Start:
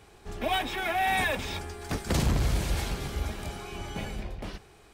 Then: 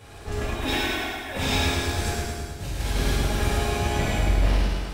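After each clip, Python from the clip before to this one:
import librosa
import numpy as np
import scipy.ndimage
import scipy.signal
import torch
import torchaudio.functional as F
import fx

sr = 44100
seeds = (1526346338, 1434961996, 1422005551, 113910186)

y = fx.over_compress(x, sr, threshold_db=-34.0, ratio=-0.5)
y = fx.echo_feedback(y, sr, ms=106, feedback_pct=59, wet_db=-5)
y = fx.rev_gated(y, sr, seeds[0], gate_ms=470, shape='falling', drr_db=-7.0)
y = F.gain(torch.from_numpy(y), -1.0).numpy()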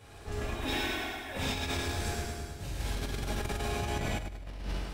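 y = fx.over_compress(x, sr, threshold_db=-24.0, ratio=-0.5)
y = F.gain(torch.from_numpy(y), -8.5).numpy()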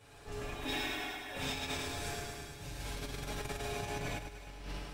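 y = fx.low_shelf(x, sr, hz=490.0, db=-3.0)
y = y + 0.48 * np.pad(y, (int(6.9 * sr / 1000.0), 0))[:len(y)]
y = fx.echo_thinned(y, sr, ms=306, feedback_pct=64, hz=420.0, wet_db=-14.5)
y = F.gain(torch.from_numpy(y), -4.5).numpy()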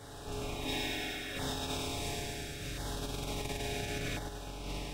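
y = fx.bin_compress(x, sr, power=0.6)
y = fx.filter_lfo_notch(y, sr, shape='saw_down', hz=0.72, low_hz=840.0, high_hz=2600.0, q=1.2)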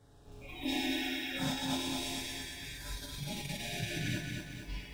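y = fx.noise_reduce_blind(x, sr, reduce_db=19)
y = fx.low_shelf(y, sr, hz=380.0, db=10.0)
y = fx.echo_crushed(y, sr, ms=227, feedback_pct=55, bits=10, wet_db=-4.5)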